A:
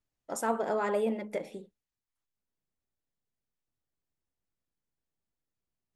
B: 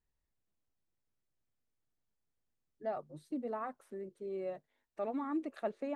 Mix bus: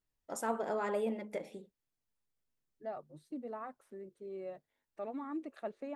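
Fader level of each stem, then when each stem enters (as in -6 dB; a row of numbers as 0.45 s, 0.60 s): -5.0 dB, -4.0 dB; 0.00 s, 0.00 s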